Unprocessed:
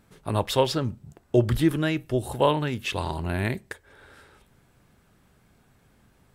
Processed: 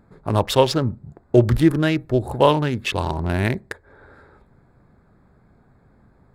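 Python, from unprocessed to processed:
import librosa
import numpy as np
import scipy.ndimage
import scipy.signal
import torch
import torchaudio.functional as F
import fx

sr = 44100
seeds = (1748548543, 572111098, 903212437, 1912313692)

y = fx.wiener(x, sr, points=15)
y = y * librosa.db_to_amplitude(6.0)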